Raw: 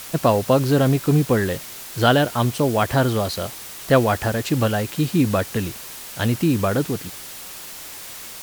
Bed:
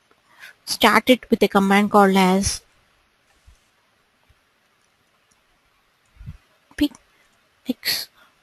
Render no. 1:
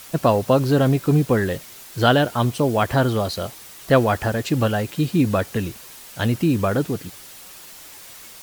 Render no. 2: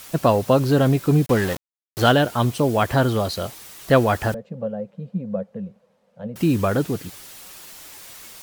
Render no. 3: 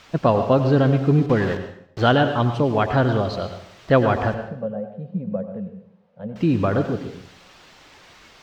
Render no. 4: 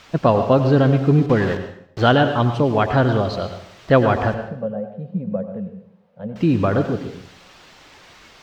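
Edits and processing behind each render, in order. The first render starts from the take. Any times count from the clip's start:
broadband denoise 6 dB, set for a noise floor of −37 dBFS
0:01.26–0:02.12: centre clipping without the shift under −25.5 dBFS; 0:04.34–0:06.36: pair of resonant band-passes 320 Hz, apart 1.4 octaves
high-frequency loss of the air 180 metres; dense smooth reverb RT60 0.66 s, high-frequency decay 0.9×, pre-delay 80 ms, DRR 7.5 dB
level +2 dB

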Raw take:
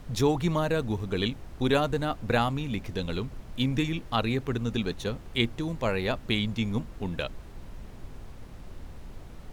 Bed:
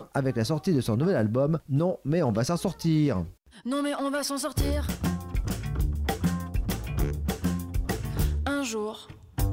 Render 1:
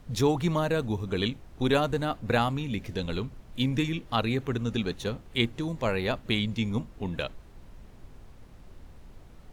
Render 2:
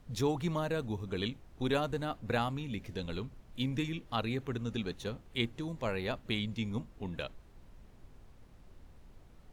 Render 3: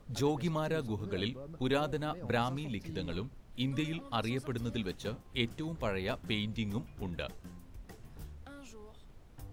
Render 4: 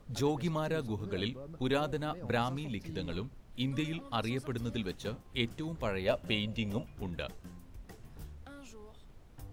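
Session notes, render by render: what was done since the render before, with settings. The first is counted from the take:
noise reduction from a noise print 6 dB
level −7 dB
mix in bed −22.5 dB
0:06.05–0:06.84: hollow resonant body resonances 580/2,800 Hz, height 13 dB → 16 dB, ringing for 35 ms

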